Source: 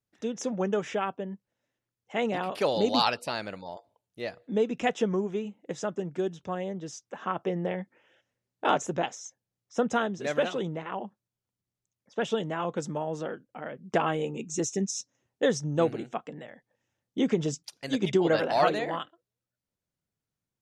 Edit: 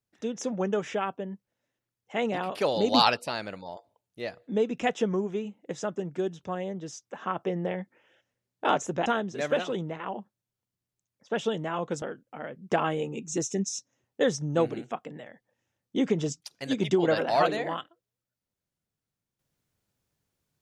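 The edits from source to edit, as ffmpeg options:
-filter_complex "[0:a]asplit=5[a][b][c][d][e];[a]atrim=end=2.922[f];[b]atrim=start=2.918:end=3.172,asetpts=PTS-STARTPTS,volume=3.5dB[g];[c]atrim=start=3.168:end=9.062[h];[d]atrim=start=9.918:end=12.882[i];[e]atrim=start=13.238[j];[f][g]acrossfade=d=0.004:c1=hsin:c2=hsin[k];[k][h]acrossfade=d=0.004:c1=hsin:c2=hsin[l];[l][i]acrossfade=d=0.004:c1=hsin:c2=hsin[m];[m][j]acrossfade=d=0.004:c1=hsin:c2=hsin"

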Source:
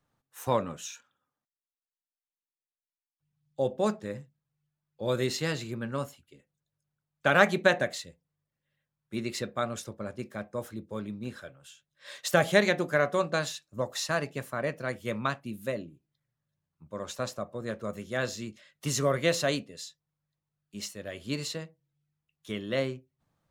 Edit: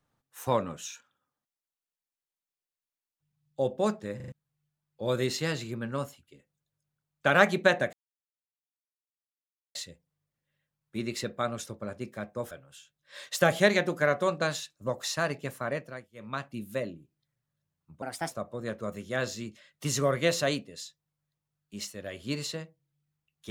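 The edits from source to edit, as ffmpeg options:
-filter_complex "[0:a]asplit=11[a][b][c][d][e][f][g][h][i][j][k];[a]atrim=end=4.202[l];[b]atrim=start=4.158:end=4.202[m];[c]atrim=start=4.158:end=4.202[n];[d]atrim=start=4.158:end=4.202[o];[e]atrim=start=4.318:end=7.93,asetpts=PTS-STARTPTS,afade=t=out:st=3.608:d=0.004:c=hsin,apad=pad_dur=1.82[p];[f]atrim=start=7.93:end=10.692,asetpts=PTS-STARTPTS,afade=t=in:d=0.004:c=hsin[q];[g]atrim=start=11.428:end=15.01,asetpts=PTS-STARTPTS,afade=t=out:st=3.162:d=0.42:silence=0.0707946[r];[h]atrim=start=15.01:end=15.05,asetpts=PTS-STARTPTS,volume=-23dB[s];[i]atrim=start=15.05:end=16.944,asetpts=PTS-STARTPTS,afade=t=in:d=0.42:silence=0.0707946[t];[j]atrim=start=16.94:end=17.32,asetpts=PTS-STARTPTS,asetrate=57771,aresample=44100,atrim=end_sample=12792,asetpts=PTS-STARTPTS[u];[k]atrim=start=17.316[v];[l][m]acrossfade=d=0.004:c1=hsin:c2=hsin[w];[w][n]acrossfade=d=0.004:c1=hsin:c2=hsin[x];[x][o]acrossfade=d=0.004:c1=hsin:c2=hsin[y];[p][q]concat=n=2:v=0:a=1[z];[y][z]acrossfade=d=0.004:c1=hsin:c2=hsin[aa];[r][s][t]concat=n=3:v=0:a=1[ab];[aa][ab]acrossfade=d=0.004:c1=hsin:c2=hsin[ac];[ac][u]acrossfade=d=0.004:c1=hsin:c2=hsin[ad];[ad][v]acrossfade=d=0.004:c1=hsin:c2=hsin"

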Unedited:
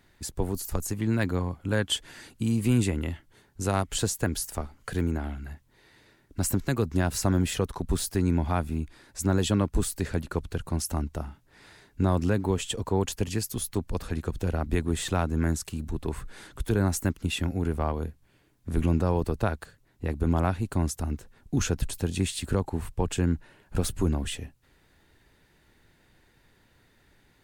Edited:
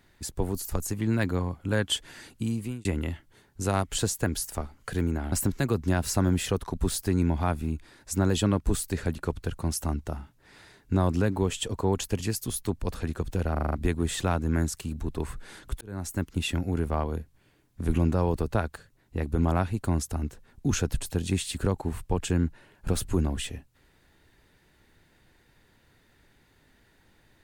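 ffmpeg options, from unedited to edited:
-filter_complex "[0:a]asplit=9[a][b][c][d][e][f][g][h][i];[a]atrim=end=2.85,asetpts=PTS-STARTPTS,afade=t=out:st=2.34:d=0.51[j];[b]atrim=start=2.85:end=5.322,asetpts=PTS-STARTPTS,afade=t=in:d=0.004:c=hsin[k];[c]atrim=start=6.398:end=14.642[l];[d]atrim=start=14.598:end=14.642[m];[e]atrim=start=14.598:end=14.642[n];[f]atrim=start=14.598:end=14.642[o];[g]atrim=start=14.598:end=14.642[p];[h]atrim=start=14.598:end=16.69,asetpts=PTS-STARTPTS,afade=t=out:st=2.088:d=0.004:c=hsin[q];[i]atrim=start=16.69,asetpts=PTS-STARTPTS,afade=t=in:d=0.53[r];[j][k]concat=n=2:v=0:a=1[s];[s][l]acrossfade=d=0.004:c1=hsin:c2=hsin[t];[t][m]acrossfade=d=0.004:c1=hsin:c2=hsin[u];[u][n]acrossfade=d=0.004:c1=hsin:c2=hsin[v];[v][o]acrossfade=d=0.004:c1=hsin:c2=hsin[w];[w][p]acrossfade=d=0.004:c1=hsin:c2=hsin[x];[q][r]concat=n=2:v=0:a=1[y];[x][y]acrossfade=d=0.004:c1=hsin:c2=hsin"

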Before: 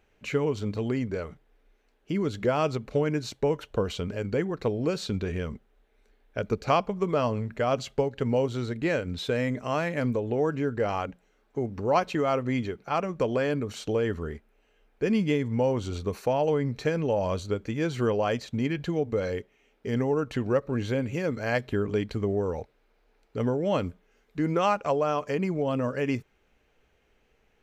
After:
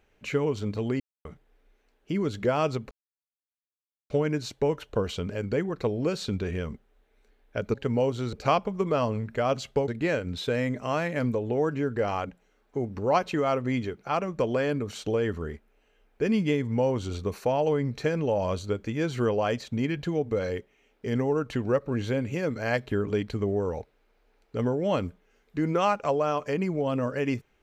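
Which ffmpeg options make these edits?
-filter_complex "[0:a]asplit=7[a][b][c][d][e][f][g];[a]atrim=end=1,asetpts=PTS-STARTPTS,afade=t=out:st=0.996:d=0.004:c=hsin[h];[b]atrim=start=1:end=1.25,asetpts=PTS-STARTPTS,volume=0[i];[c]atrim=start=1.25:end=2.91,asetpts=PTS-STARTPTS,afade=t=in:d=0.004:c=hsin,afade=t=out:st=1.656:d=0.004:c=hsin,apad=pad_dur=1.19[j];[d]atrim=start=2.91:end=6.552,asetpts=PTS-STARTPTS,afade=t=in:d=0.004:c=hsin[k];[e]atrim=start=8.098:end=8.692[l];[f]atrim=start=6.548:end=8.102[m];[g]atrim=start=8.688[n];[h][i][j][k]concat=n=4:v=0:a=1[o];[o][l]acrossfade=d=0.004:c1=hsin:c2=hsin[p];[p][m]acrossfade=d=0.004:c1=hsin:c2=hsin[q];[q][n]acrossfade=d=0.004:c1=hsin:c2=hsin"

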